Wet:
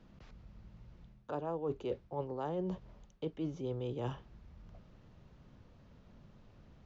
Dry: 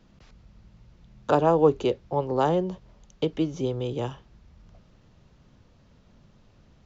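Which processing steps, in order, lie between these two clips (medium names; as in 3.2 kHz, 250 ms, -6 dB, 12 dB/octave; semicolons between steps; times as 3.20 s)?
treble shelf 4.5 kHz -10.5 dB; reverse; compression 10:1, threshold -32 dBFS, peak gain reduction 18.5 dB; reverse; trim -2 dB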